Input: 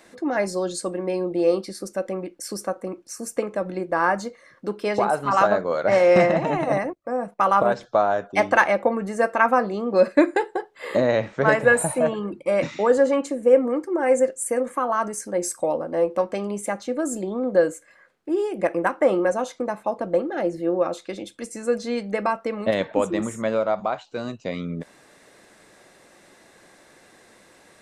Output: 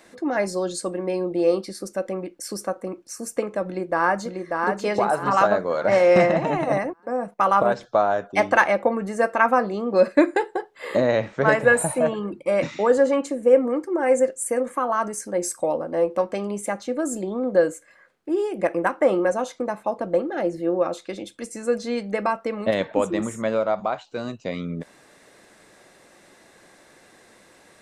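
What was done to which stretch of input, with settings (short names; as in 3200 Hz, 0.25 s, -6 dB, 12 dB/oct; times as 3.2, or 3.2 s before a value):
3.66–4.71 echo throw 0.59 s, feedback 35%, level -3.5 dB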